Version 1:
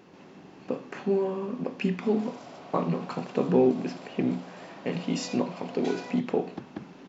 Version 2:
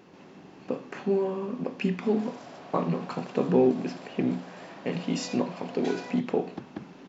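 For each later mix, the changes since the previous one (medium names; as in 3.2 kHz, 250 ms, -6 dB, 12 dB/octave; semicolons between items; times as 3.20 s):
background: remove band-stop 1.7 kHz, Q 6.9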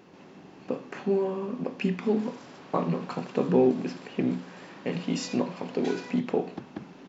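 background: add peaking EQ 670 Hz -11.5 dB 0.51 oct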